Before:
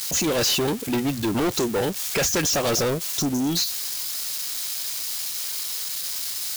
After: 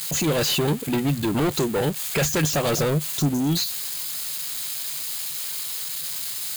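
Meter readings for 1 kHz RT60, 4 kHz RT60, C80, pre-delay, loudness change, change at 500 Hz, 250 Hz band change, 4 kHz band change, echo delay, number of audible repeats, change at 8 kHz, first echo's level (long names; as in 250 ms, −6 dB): no reverb audible, no reverb audible, no reverb audible, no reverb audible, 0.0 dB, 0.0 dB, +1.0 dB, −2.0 dB, no echo audible, no echo audible, −2.5 dB, no echo audible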